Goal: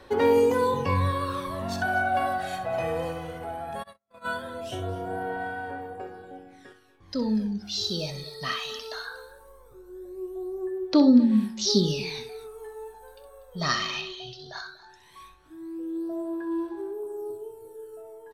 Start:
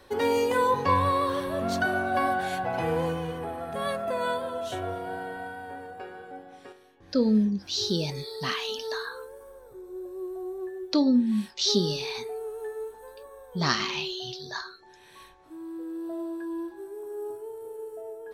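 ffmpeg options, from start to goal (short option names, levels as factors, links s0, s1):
-filter_complex "[0:a]asettb=1/sr,asplit=3[s0][s1][s2];[s0]atrim=end=16.914[s3];[s1]atrim=start=16.91:end=17.83,asetpts=PTS-STARTPTS,afade=t=in:d=0.004:c=qsin,afade=t=out:st=0.916:d=0.004:c=qsin,equalizer=f=2000:w=4:g=-11[s4];[s2]atrim=start=17.826[s5];[s3][s4]acrossfade=d=0.004:c1=hsin:c2=qsin[s6];[s6][s5]acrossfade=d=0.004:c1=qsin:c2=hsin,aphaser=in_gain=1:out_gain=1:delay=1.6:decay=0.57:speed=0.18:type=sinusoidal,asettb=1/sr,asplit=3[s7][s8][s9];[s7]atrim=end=14.014[s10];[s8]atrim=start=14.01:end=14.57,asetpts=PTS-STARTPTS,afade=t=in:d=0.004:c=qsin,afade=t=out:st=0.556:d=0.004:c=qsin,aemphasis=mode=reproduction:type=50fm[s11];[s9]atrim=start=14.566[s12];[s10][s11]acrossfade=d=0.004:c1=hsin:c2=qsin[s13];[s13][s12]acrossfade=d=0.004:c1=qsin:c2=hsin,asplit=2[s14][s15];[s15]aecho=0:1:64|241:0.316|0.133[s16];[s14][s16]amix=inputs=2:normalize=0,asplit=3[s17][s18][s19];[s17]afade=t=out:st=3.82:d=0.02[s20];[s18]agate=range=0.00282:threshold=0.0501:ratio=16:detection=peak,afade=t=in:st=3.82:d=0.02,afade=t=out:st=4.24:d=0.02[s21];[s19]afade=t=in:st=4.24:d=0.02[s22];[s20][s21][s22]amix=inputs=3:normalize=0,volume=0.708"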